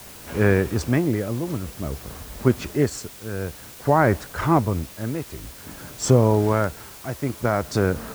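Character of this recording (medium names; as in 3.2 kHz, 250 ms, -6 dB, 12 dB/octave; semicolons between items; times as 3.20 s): tremolo triangle 0.53 Hz, depth 80%; a quantiser's noise floor 8-bit, dither triangular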